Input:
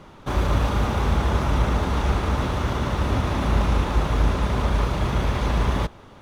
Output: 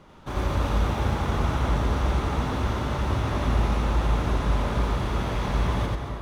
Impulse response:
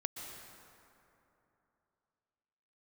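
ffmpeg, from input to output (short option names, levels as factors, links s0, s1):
-filter_complex "[0:a]asplit=2[s0][s1];[1:a]atrim=start_sample=2205,adelay=90[s2];[s1][s2]afir=irnorm=-1:irlink=0,volume=1.12[s3];[s0][s3]amix=inputs=2:normalize=0,volume=0.473"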